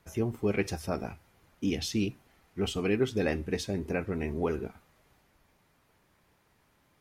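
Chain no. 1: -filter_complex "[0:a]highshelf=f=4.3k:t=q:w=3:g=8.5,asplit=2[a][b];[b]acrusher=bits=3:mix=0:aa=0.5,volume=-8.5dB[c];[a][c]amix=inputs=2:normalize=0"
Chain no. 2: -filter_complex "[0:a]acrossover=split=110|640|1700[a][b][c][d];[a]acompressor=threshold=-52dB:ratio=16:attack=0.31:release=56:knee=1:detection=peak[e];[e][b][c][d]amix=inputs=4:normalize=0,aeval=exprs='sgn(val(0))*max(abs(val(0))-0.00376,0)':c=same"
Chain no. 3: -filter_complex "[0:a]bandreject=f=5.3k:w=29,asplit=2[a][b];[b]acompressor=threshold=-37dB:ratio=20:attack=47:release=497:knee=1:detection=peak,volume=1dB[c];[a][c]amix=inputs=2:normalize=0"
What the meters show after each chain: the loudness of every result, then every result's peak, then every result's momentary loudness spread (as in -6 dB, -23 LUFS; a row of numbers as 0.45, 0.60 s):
-28.0, -33.0, -29.5 LUFS; -9.5, -16.0, -12.5 dBFS; 11, 8, 8 LU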